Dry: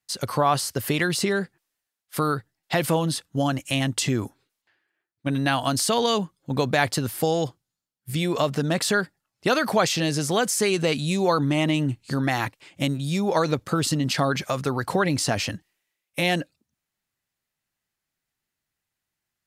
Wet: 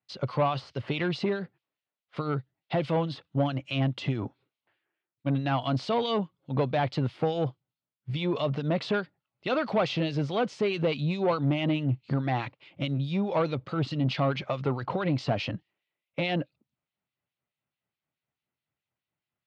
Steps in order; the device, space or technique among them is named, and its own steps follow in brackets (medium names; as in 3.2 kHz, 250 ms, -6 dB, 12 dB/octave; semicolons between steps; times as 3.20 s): 2.21–2.82 s: dynamic bell 1.2 kHz, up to -4 dB, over -35 dBFS, Q 0.72; guitar amplifier with harmonic tremolo (harmonic tremolo 4.7 Hz, depth 70%, crossover 2 kHz; saturation -20 dBFS, distortion -13 dB; cabinet simulation 84–3600 Hz, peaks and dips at 130 Hz +5 dB, 580 Hz +3 dB, 1.7 kHz -7 dB)